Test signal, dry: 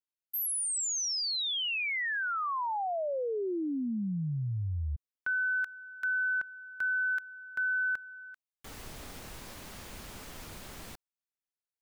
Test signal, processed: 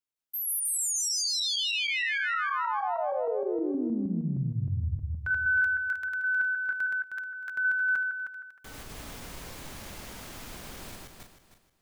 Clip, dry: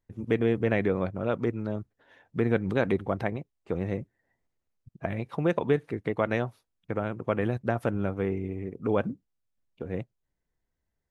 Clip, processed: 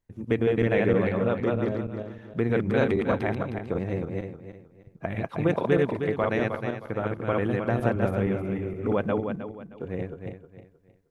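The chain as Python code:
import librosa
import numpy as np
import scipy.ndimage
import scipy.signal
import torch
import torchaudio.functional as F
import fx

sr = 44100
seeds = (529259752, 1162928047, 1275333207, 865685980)

y = fx.reverse_delay_fb(x, sr, ms=156, feedback_pct=53, wet_db=-1)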